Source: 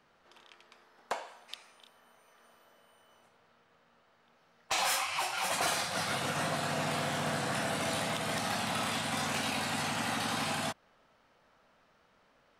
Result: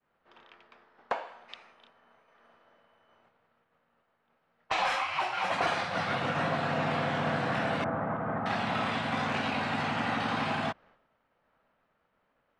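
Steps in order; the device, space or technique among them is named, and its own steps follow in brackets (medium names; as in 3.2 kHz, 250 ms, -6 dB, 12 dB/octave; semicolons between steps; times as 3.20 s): 7.84–8.46 s: Chebyshev low-pass 1.4 kHz, order 3; hearing-loss simulation (low-pass 2.6 kHz 12 dB/octave; expander -59 dBFS); trim +4 dB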